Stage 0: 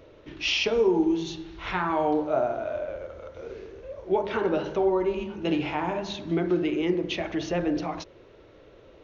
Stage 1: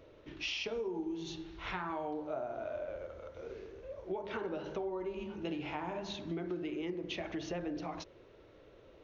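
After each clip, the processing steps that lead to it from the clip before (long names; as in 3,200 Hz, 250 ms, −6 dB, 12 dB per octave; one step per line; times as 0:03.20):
downward compressor 5 to 1, threshold −29 dBFS, peak gain reduction 11 dB
level −6.5 dB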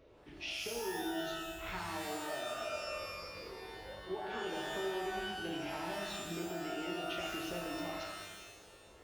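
reverb with rising layers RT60 1.2 s, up +12 semitones, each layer −2 dB, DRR 1.5 dB
level −5 dB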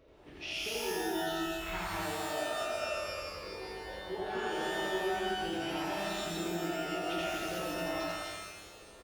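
loudspeakers that aren't time-aligned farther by 29 metres 0 dB, 85 metres −2 dB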